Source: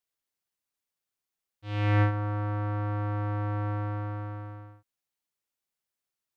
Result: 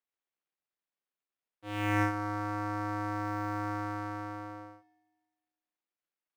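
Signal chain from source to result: switching dead time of 0.096 ms; three-band isolator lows -22 dB, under 170 Hz, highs -15 dB, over 3500 Hz; in parallel at -3 dB: soft clip -25 dBFS, distortion -14 dB; on the sum: dynamic EQ 500 Hz, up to -8 dB, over -44 dBFS, Q 1.2; Schroeder reverb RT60 1.5 s, combs from 32 ms, DRR 18 dB

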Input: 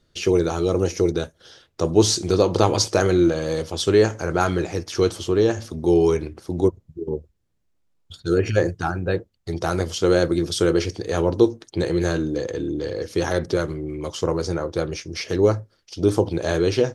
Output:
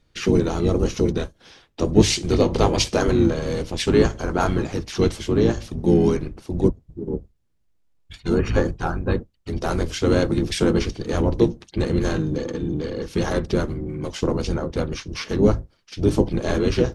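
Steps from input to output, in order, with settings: octaver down 1 oct, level -2 dB; harmoniser -12 st -6 dB, -7 st -6 dB, -3 st -12 dB; gain -2.5 dB

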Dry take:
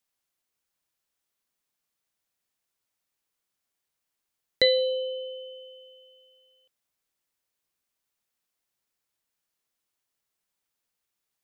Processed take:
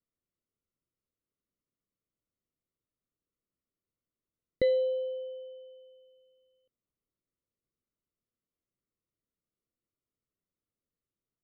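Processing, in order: running mean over 53 samples; gain +4 dB

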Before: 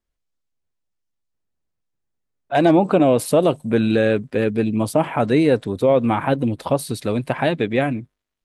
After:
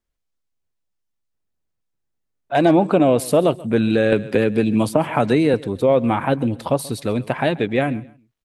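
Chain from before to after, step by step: feedback echo 0.133 s, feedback 29%, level -21 dB; 4.12–5.54 three-band squash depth 100%

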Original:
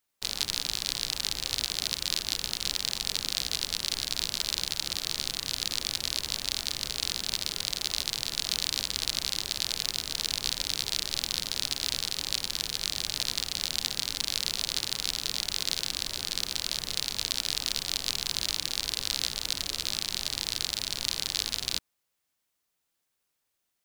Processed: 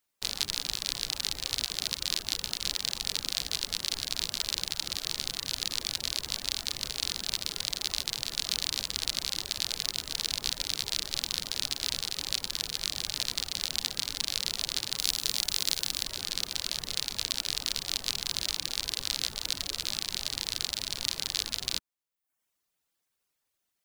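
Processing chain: reverb removal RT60 0.65 s; 14.97–16.02 high shelf 5200 Hz -> 8900 Hz +8 dB

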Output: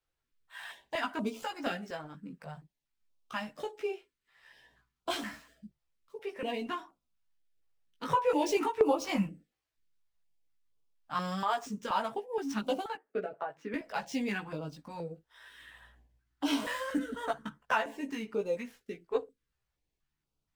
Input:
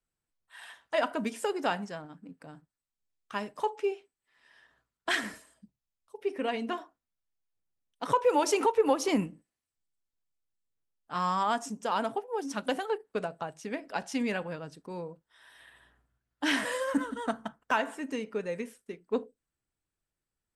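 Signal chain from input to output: median filter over 5 samples; 12.95–13.74 three-band isolator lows -18 dB, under 210 Hz, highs -17 dB, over 2300 Hz; in parallel at +2 dB: compressor, threshold -39 dBFS, peak gain reduction 18.5 dB; on the sum: chorus voices 4, 0.15 Hz, delay 17 ms, depth 3.7 ms; stepped notch 4.2 Hz 220–1800 Hz

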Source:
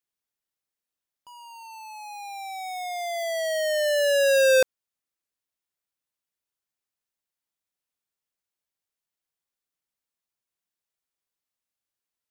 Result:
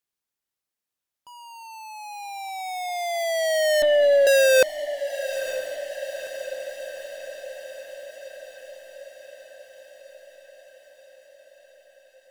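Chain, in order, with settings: added harmonics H 5 -18 dB, 7 -19 dB, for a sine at -16 dBFS; 3.82–4.27 LPC vocoder at 8 kHz pitch kept; diffused feedback echo 0.945 s, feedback 65%, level -12 dB; gain +3 dB

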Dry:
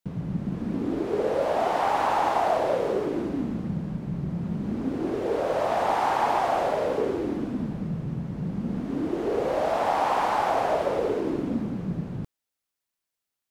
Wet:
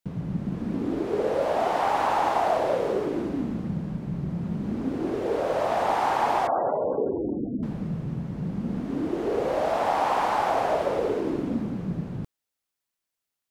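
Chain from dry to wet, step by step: 6.47–7.63 spectral gate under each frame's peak -20 dB strong

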